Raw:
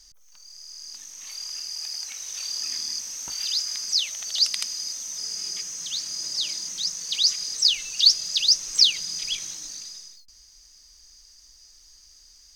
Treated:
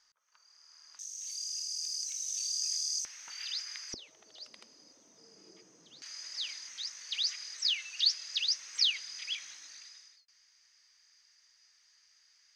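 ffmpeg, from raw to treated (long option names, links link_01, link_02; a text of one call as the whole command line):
ffmpeg -i in.wav -af "asetnsamples=nb_out_samples=441:pad=0,asendcmd='0.99 bandpass f 7000;3.05 bandpass f 1900;3.94 bandpass f 360;6.02 bandpass f 1900',bandpass=frequency=1300:width_type=q:width=1.8:csg=0" out.wav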